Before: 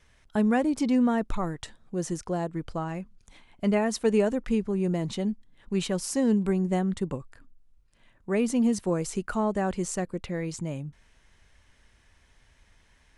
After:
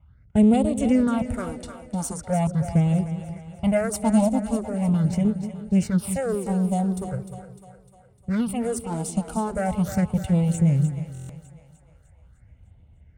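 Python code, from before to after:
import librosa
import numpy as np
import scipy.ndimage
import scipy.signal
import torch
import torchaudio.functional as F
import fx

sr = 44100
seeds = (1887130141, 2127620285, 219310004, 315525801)

y = fx.lower_of_two(x, sr, delay_ms=1.4)
y = fx.peak_eq(y, sr, hz=90.0, db=14.5, octaves=3.0)
y = fx.rider(y, sr, range_db=4, speed_s=2.0)
y = fx.phaser_stages(y, sr, stages=6, low_hz=110.0, high_hz=1600.0, hz=0.41, feedback_pct=25)
y = fx.env_lowpass(y, sr, base_hz=1100.0, full_db=-25.0)
y = scipy.signal.sosfilt(scipy.signal.butter(2, 58.0, 'highpass', fs=sr, output='sos'), y)
y = fx.peak_eq(y, sr, hz=9000.0, db=15.0, octaves=0.29)
y = fx.echo_split(y, sr, split_hz=490.0, low_ms=180, high_ms=302, feedback_pct=52, wet_db=-10)
y = fx.buffer_glitch(y, sr, at_s=(11.13,), block=1024, repeats=6)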